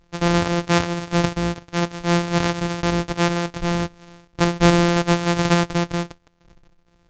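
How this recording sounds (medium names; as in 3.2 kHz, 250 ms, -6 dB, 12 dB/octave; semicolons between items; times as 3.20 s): a buzz of ramps at a fixed pitch in blocks of 256 samples; SBC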